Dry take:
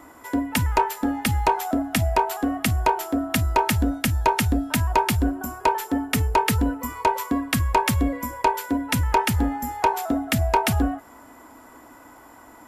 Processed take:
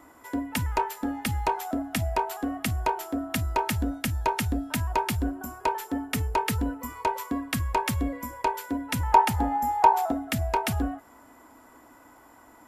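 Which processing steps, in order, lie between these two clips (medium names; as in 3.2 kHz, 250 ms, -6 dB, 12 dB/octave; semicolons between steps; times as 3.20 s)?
9.00–10.12 s: peaking EQ 820 Hz +11.5 dB 0.77 oct; trim -6 dB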